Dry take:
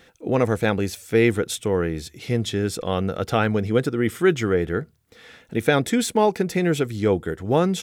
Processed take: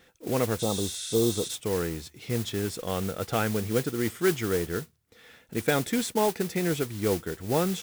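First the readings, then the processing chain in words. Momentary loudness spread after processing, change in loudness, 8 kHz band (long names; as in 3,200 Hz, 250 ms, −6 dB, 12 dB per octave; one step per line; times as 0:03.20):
6 LU, −6.0 dB, 0.0 dB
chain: noise that follows the level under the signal 12 dB
healed spectral selection 0:00.62–0:01.46, 1,300–11,000 Hz after
level −6.5 dB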